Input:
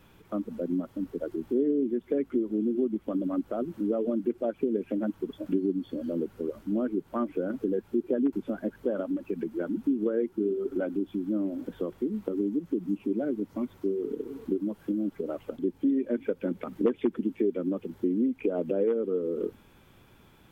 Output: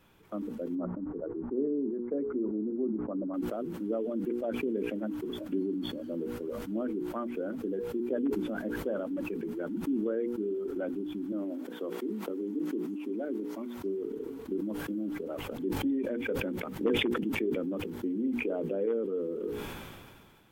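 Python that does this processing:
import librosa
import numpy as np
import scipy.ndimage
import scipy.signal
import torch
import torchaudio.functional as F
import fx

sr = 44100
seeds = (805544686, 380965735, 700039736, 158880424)

y = fx.lowpass(x, sr, hz=1300.0, slope=24, at=(0.75, 3.34))
y = fx.highpass(y, sr, hz=230.0, slope=24, at=(11.32, 13.77))
y = fx.pre_swell(y, sr, db_per_s=140.0, at=(15.23, 17.87))
y = fx.low_shelf(y, sr, hz=150.0, db=-4.5)
y = fx.hum_notches(y, sr, base_hz=60, count=8)
y = fx.sustainer(y, sr, db_per_s=30.0)
y = y * 10.0 ** (-4.0 / 20.0)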